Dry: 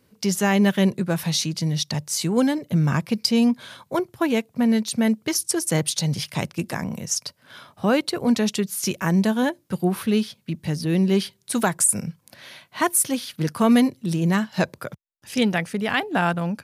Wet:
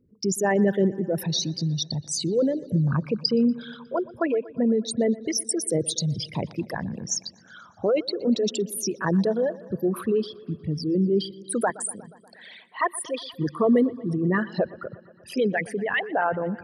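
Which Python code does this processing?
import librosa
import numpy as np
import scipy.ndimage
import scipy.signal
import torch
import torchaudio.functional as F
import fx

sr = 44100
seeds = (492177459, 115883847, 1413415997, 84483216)

y = fx.envelope_sharpen(x, sr, power=3.0)
y = fx.bandpass_edges(y, sr, low_hz=370.0, high_hz=5900.0, at=(11.7, 13.32))
y = fx.echo_wet_lowpass(y, sr, ms=120, feedback_pct=69, hz=3300.0, wet_db=-20.0)
y = y * 10.0 ** (-2.5 / 20.0)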